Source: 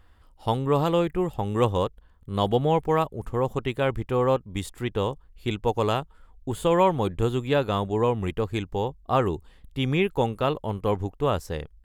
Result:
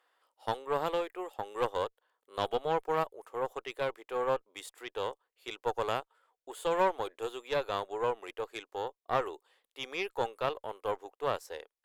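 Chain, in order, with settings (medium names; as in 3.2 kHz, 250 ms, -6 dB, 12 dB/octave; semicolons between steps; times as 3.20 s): inverse Chebyshev high-pass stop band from 170 Hz, stop band 50 dB; valve stage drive 15 dB, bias 0.75; trim -2.5 dB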